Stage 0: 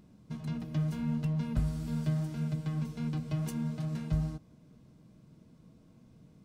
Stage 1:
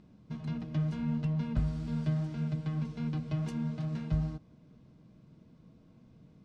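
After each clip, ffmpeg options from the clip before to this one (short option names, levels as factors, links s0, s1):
-af "lowpass=4800"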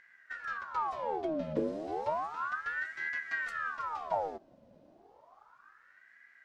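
-af "aeval=exprs='val(0)*sin(2*PI*1100*n/s+1100*0.65/0.32*sin(2*PI*0.32*n/s))':c=same"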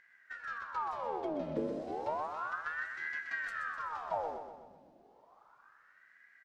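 -af "aecho=1:1:126|252|378|504|630|756:0.422|0.219|0.114|0.0593|0.0308|0.016,volume=0.668"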